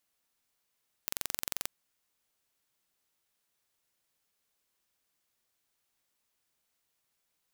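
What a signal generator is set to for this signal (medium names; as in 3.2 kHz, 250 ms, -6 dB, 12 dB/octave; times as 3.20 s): pulse train 22.6 per s, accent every 0, -5.5 dBFS 0.59 s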